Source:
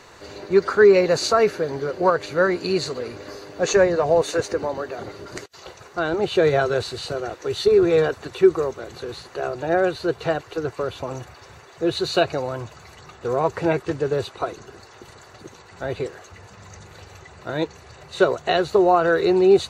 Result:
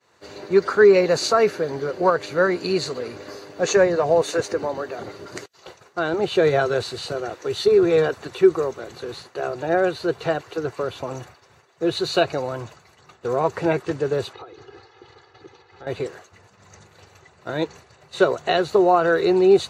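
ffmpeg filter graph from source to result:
ffmpeg -i in.wav -filter_complex "[0:a]asettb=1/sr,asplit=3[link_01][link_02][link_03];[link_01]atrim=end=14.334[link_04];[link_02]atrim=start=14.33:end=15.87,asetpts=PTS-STARTPTS,afade=type=in:duration=0.004:curve=qsin,afade=type=out:start_time=1.536:duration=0.004:curve=qsin,lowpass=frequency=5000:width=0.5412,lowpass=frequency=5000:width=1.3066,aecho=1:1:2.4:0.76,atrim=end_sample=67914,acompressor=threshold=-35dB:ratio=10:attack=3.2:release=140:knee=1:detection=peak[link_05];[link_03]atrim=start=15.866[link_06];[link_04][link_05]acrossfade=duration=0.004:curve1=hsin:curve2=qsin[link_07];[link_07][link_06]acrossfade=duration=0.004:curve1=qsin:curve2=hsin,agate=range=-33dB:threshold=-37dB:ratio=3:detection=peak,highpass=99" out.wav

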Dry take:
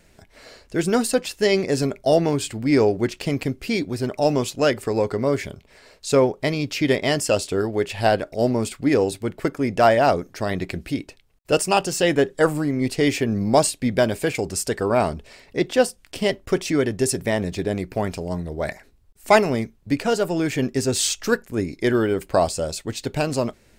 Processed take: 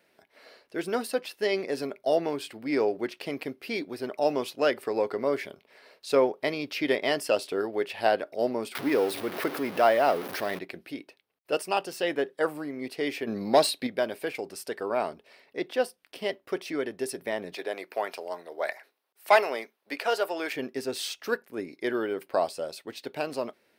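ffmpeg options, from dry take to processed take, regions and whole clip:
ffmpeg -i in.wav -filter_complex "[0:a]asettb=1/sr,asplit=3[link_01][link_02][link_03];[link_01]atrim=end=8.754[link_04];[link_02]atrim=start=8.75:end=10.59,asetpts=PTS-STARTPTS,afade=type=in:duration=0.004:curve=qsin,afade=type=out:start_time=1.836:duration=0.004:curve=qsin,aeval=exprs='val(0)+0.5*0.0631*sgn(val(0))':channel_layout=same,acompressor=mode=upward:threshold=-20dB:ratio=2.5:attack=3.2:release=140:knee=2.83:detection=peak,acrusher=bits=8:mode=log:mix=0:aa=0.000001[link_05];[link_03]atrim=start=10.586[link_06];[link_04][link_05]acrossfade=duration=0.004:curve1=hsin:curve2=qsin[link_07];[link_07][link_06]acrossfade=duration=0.004:curve1=qsin:curve2=hsin,asettb=1/sr,asplit=3[link_08][link_09][link_10];[link_08]atrim=end=13.274[link_11];[link_09]atrim=start=13.27:end=13.87,asetpts=PTS-STARTPTS,afade=type=in:duration=0.004:curve=qsin,afade=type=out:start_time=0.596:duration=0.004:curve=qsin,equalizer=frequency=4000:width_type=o:width=0.21:gain=13.5,acontrast=86[link_12];[link_10]atrim=start=13.866[link_13];[link_11][link_12]acrossfade=duration=0.004:curve1=hsin:curve2=qsin[link_14];[link_14][link_13]acrossfade=duration=0.004:curve1=qsin:curve2=hsin,asettb=1/sr,asplit=3[link_15][link_16][link_17];[link_15]atrim=end=17.544[link_18];[link_16]atrim=start=17.54:end=20.53,asetpts=PTS-STARTPTS,afade=type=in:duration=0.004:curve=qsin,afade=type=out:start_time=2.986:duration=0.004:curve=qsin,highpass=560,acontrast=48[link_19];[link_17]atrim=start=20.526[link_20];[link_18][link_19]acrossfade=duration=0.004:curve1=hsin:curve2=qsin[link_21];[link_21][link_20]acrossfade=duration=0.004:curve1=qsin:curve2=hsin,highpass=340,equalizer=frequency=7200:width=2:gain=-14.5,dynaudnorm=framelen=980:gausssize=9:maxgain=11.5dB,volume=-6.5dB" out.wav

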